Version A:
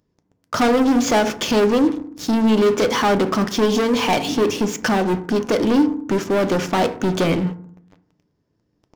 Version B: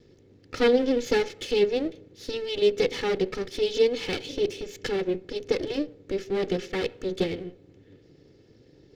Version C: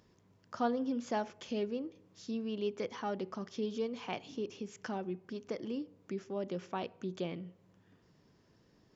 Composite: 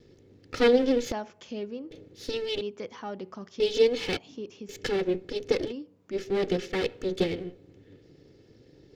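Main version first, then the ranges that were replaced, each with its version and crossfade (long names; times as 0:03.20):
B
0:01.12–0:01.91: punch in from C
0:02.61–0:03.60: punch in from C
0:04.17–0:04.69: punch in from C
0:05.70–0:06.14: punch in from C, crossfade 0.06 s
not used: A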